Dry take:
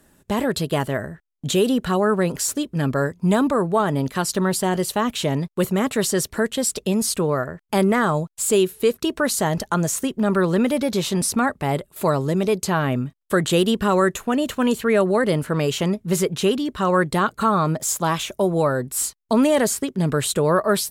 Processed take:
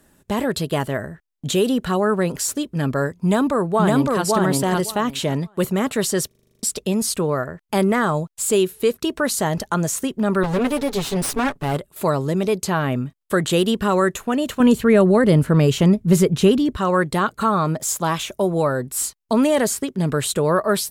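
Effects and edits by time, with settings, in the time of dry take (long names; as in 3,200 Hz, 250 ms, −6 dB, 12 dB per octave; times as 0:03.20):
0:03.16–0:04.24: delay throw 560 ms, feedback 15%, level −1 dB
0:06.27: stutter in place 0.04 s, 9 plays
0:10.43–0:11.77: lower of the sound and its delayed copy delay 7.1 ms
0:14.60–0:16.77: low-shelf EQ 280 Hz +11.5 dB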